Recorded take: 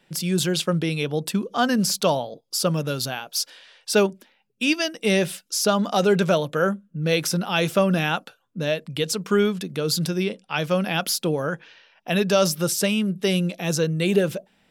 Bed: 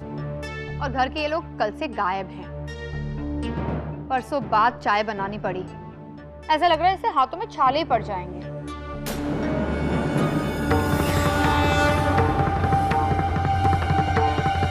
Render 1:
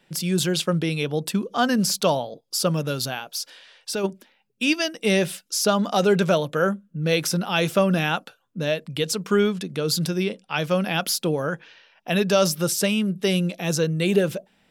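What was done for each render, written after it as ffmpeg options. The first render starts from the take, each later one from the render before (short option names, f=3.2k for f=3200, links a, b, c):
-filter_complex "[0:a]asplit=3[a][b][c];[a]afade=t=out:st=3.23:d=0.02[d];[b]acompressor=threshold=-26dB:ratio=3:attack=3.2:release=140:knee=1:detection=peak,afade=t=in:st=3.23:d=0.02,afade=t=out:st=4.03:d=0.02[e];[c]afade=t=in:st=4.03:d=0.02[f];[d][e][f]amix=inputs=3:normalize=0,asettb=1/sr,asplit=3[g][h][i];[g]atrim=end=9.354[j];[h]atrim=start=9.35:end=9.88,asetpts=PTS-STARTPTS,afade=t=in:d=0.004:c=qsin,afade=t=out:st=0.526:d=0.004:c=qsin,lowpass=11k[k];[i]atrim=start=9.876[l];[j][k]acrossfade=d=0.004:c1=hsin:c2=qsin[m];[m][l]acrossfade=d=0.004:c1=qsin:c2=hsin"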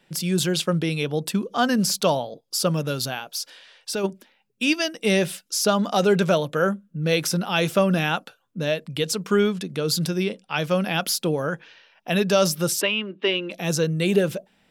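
-filter_complex "[0:a]asplit=3[a][b][c];[a]afade=t=out:st=12.8:d=0.02[d];[b]highpass=f=290:w=0.5412,highpass=f=290:w=1.3066,equalizer=f=300:t=q:w=4:g=10,equalizer=f=470:t=q:w=4:g=-4,equalizer=f=730:t=q:w=4:g=-5,equalizer=f=1k:t=q:w=4:g=8,equalizer=f=1.9k:t=q:w=4:g=3,equalizer=f=2.8k:t=q:w=4:g=6,lowpass=f=3.5k:w=0.5412,lowpass=f=3.5k:w=1.3066,afade=t=in:st=12.8:d=0.02,afade=t=out:st=13.5:d=0.02[e];[c]afade=t=in:st=13.5:d=0.02[f];[d][e][f]amix=inputs=3:normalize=0"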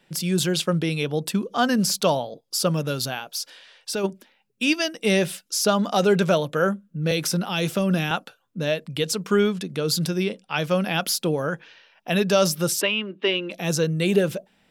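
-filter_complex "[0:a]asettb=1/sr,asplit=3[a][b][c];[a]atrim=end=7.114[d];[b]atrim=start=7.11:end=8.11,asetpts=PTS-STARTPTS,afade=t=in:d=0.004:c=qsin,afade=t=out:st=0.996:d=0.004:c=qsin,acrossover=split=390|3000[e][f][g];[f]acompressor=threshold=-26dB:ratio=6:attack=3.2:release=140:knee=2.83:detection=peak[h];[e][h][g]amix=inputs=3:normalize=0[i];[c]atrim=start=8.106[j];[d][i]acrossfade=d=0.004:c1=hsin:c2=qsin[k];[k][j]acrossfade=d=0.004:c1=qsin:c2=hsin"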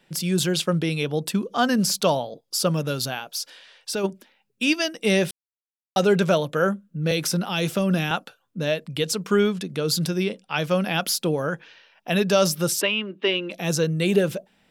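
-filter_complex "[0:a]asplit=3[a][b][c];[a]atrim=end=5.31,asetpts=PTS-STARTPTS,afade=t=out:st=5.306:d=0.004:c=hsin[d];[b]atrim=start=5.31:end=5.96,asetpts=PTS-STARTPTS,volume=0[e];[c]atrim=start=5.96,asetpts=PTS-STARTPTS,afade=t=in:d=0.004:c=hsin[f];[d][e][f]concat=n=3:v=0:a=1"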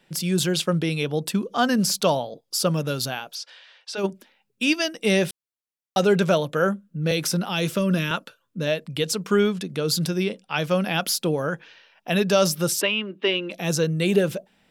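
-filter_complex "[0:a]asplit=3[a][b][c];[a]afade=t=out:st=3.34:d=0.02[d];[b]highpass=590,lowpass=4.9k,afade=t=in:st=3.34:d=0.02,afade=t=out:st=3.97:d=0.02[e];[c]afade=t=in:st=3.97:d=0.02[f];[d][e][f]amix=inputs=3:normalize=0,asettb=1/sr,asplit=3[g][h][i];[g]atrim=end=7.644[j];[h]atrim=start=7.64:end=8.67,asetpts=PTS-STARTPTS,afade=t=in:d=0.004:c=qsin,afade=t=out:st=1.026:d=0.004:c=qsin,asuperstop=centerf=770:order=4:qfactor=4.2[k];[i]atrim=start=8.666[l];[j][k]acrossfade=d=0.004:c1=hsin:c2=qsin[m];[m][l]acrossfade=d=0.004:c1=qsin:c2=hsin"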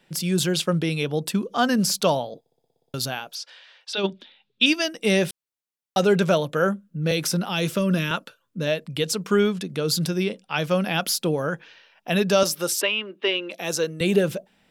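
-filter_complex "[0:a]asettb=1/sr,asplit=3[a][b][c];[a]atrim=end=3.934[d];[b]atrim=start=3.93:end=4.66,asetpts=PTS-STARTPTS,afade=t=in:d=0.004:c=qsin,afade=t=out:st=0.726:d=0.004:c=qsin,lowpass=f=3.6k:t=q:w=6[e];[c]atrim=start=4.656[f];[d][e]acrossfade=d=0.004:c1=hsin:c2=qsin[g];[g][f]acrossfade=d=0.004:c1=qsin:c2=hsin,asettb=1/sr,asplit=3[h][i][j];[h]atrim=end=12.434[k];[i]atrim=start=12.43:end=14.01,asetpts=PTS-STARTPTS,afade=t=in:d=0.004:c=qsin,afade=t=out:st=1.576:d=0.004:c=qsin,highpass=320[l];[j]atrim=start=14.006[m];[k][l]acrossfade=d=0.004:c1=hsin:c2=qsin[n];[n][m]acrossfade=d=0.004:c1=qsin:c2=hsin,asplit=10[o][p][q][r][s][t][u][v][w][x];[o]atrim=end=2.462[y];[p]atrim=start=2.398:end=2.462[z];[q]atrim=start=2.398:end=2.462[aa];[r]atrim=start=2.398:end=2.462[ab];[s]atrim=start=2.398:end=2.462[ac];[t]atrim=start=2.398:end=2.462[ad];[u]atrim=start=2.398:end=2.462[ae];[v]atrim=start=2.398:end=2.462[af];[w]atrim=start=2.398:end=2.462[ag];[x]atrim=start=2.938[ah];[y][z]acrossfade=d=0.004:c1=hsin:c2=hsin[ai];[ai][aa]acrossfade=d=0.004:c1=hsin:c2=hsin[aj];[aj][ab]acrossfade=d=0.004:c1=hsin:c2=hsin[ak];[ak][ac]acrossfade=d=0.004:c1=hsin:c2=hsin[al];[al][ad]acrossfade=d=0.004:c1=hsin:c2=hsin[am];[am][ae]acrossfade=d=0.004:c1=hsin:c2=hsin[an];[an][af]acrossfade=d=0.004:c1=hsin:c2=hsin[ao];[ao][ag]acrossfade=d=0.004:c1=hsin:c2=hsin[ap];[ap][ah]acrossfade=d=0.004:c1=hsin:c2=hsin"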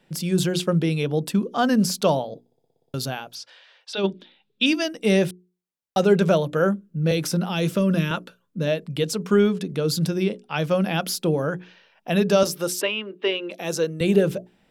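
-af "tiltshelf=f=790:g=3.5,bandreject=f=60:t=h:w=6,bandreject=f=120:t=h:w=6,bandreject=f=180:t=h:w=6,bandreject=f=240:t=h:w=6,bandreject=f=300:t=h:w=6,bandreject=f=360:t=h:w=6,bandreject=f=420:t=h:w=6"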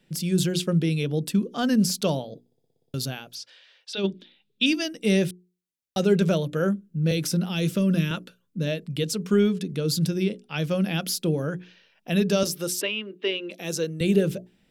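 -af "equalizer=f=900:w=0.79:g=-10"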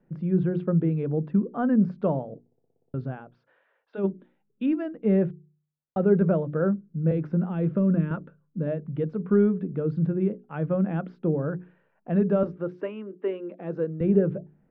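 -af "lowpass=f=1.4k:w=0.5412,lowpass=f=1.4k:w=1.3066,bandreject=f=49.97:t=h:w=4,bandreject=f=99.94:t=h:w=4,bandreject=f=149.91:t=h:w=4"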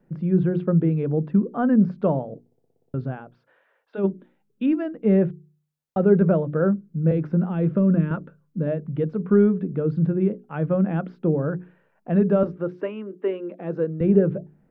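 -af "volume=3.5dB"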